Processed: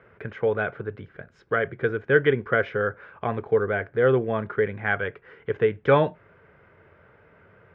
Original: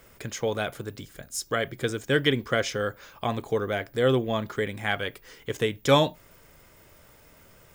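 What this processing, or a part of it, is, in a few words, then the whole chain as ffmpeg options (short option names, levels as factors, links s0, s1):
bass cabinet: -af "highpass=84,equalizer=f=94:t=q:w=4:g=6,equalizer=f=180:t=q:w=4:g=3,equalizer=f=270:t=q:w=4:g=-5,equalizer=f=430:t=q:w=4:g=7,equalizer=f=1500:t=q:w=4:g=7,lowpass=f=2300:w=0.5412,lowpass=f=2300:w=1.3066"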